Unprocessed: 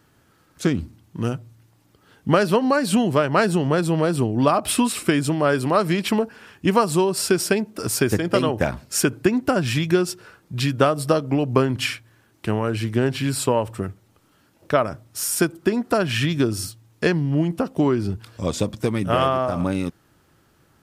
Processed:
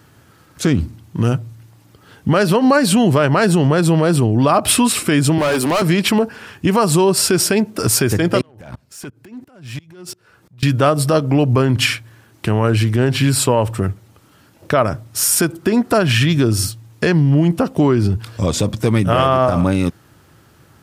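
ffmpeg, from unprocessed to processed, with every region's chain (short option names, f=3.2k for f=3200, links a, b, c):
-filter_complex "[0:a]asettb=1/sr,asplit=3[a][b][c];[a]atrim=end=5.384[d];[b]atrim=start=5.38:end=5.82,asetpts=PTS-STARTPTS,afade=t=in:d=0.004:c=qsin,afade=t=out:st=0.436:d=0.004:c=qsin,highpass=f=170:w=0.5412,highpass=f=170:w=1.3066,highshelf=f=7.9k:g=10.5,volume=22.5dB,asoftclip=hard,volume=-22.5dB[e];[c]atrim=start=5.816[f];[d][e]acrossfade=d=0.004:c1=hsin:c2=qsin[g];[g][f]acrossfade=d=0.004:c1=qsin:c2=hsin,asettb=1/sr,asplit=3[h][i][j];[h]atrim=end=8.414[k];[i]atrim=start=8.41:end=10.63,asetpts=PTS-STARTPTS,afade=t=in:d=0.004:c=qsin,afade=t=out:st=2.216:d=0.004:c=qsin,acompressor=threshold=-31dB:ratio=12:attack=3.2:release=140:knee=1:detection=peak,asoftclip=type=hard:threshold=-30dB,aeval=exprs='val(0)*pow(10,-27*if(lt(mod(-2.9*n/s,1),2*abs(-2.9)/1000),1-mod(-2.9*n/s,1)/(2*abs(-2.9)/1000),(mod(-2.9*n/s,1)-2*abs(-2.9)/1000)/(1-2*abs(-2.9)/1000))/20)':c=same[l];[j]atrim=start=10.626[m];[k][l]acrossfade=d=0.004:c1=hsin:c2=qsin[n];[n][m]acrossfade=d=0.004:c1=qsin:c2=hsin,equalizer=f=100:t=o:w=1.7:g=9.5,alimiter=limit=-12dB:level=0:latency=1:release=64,lowshelf=f=220:g=-7,volume=9dB"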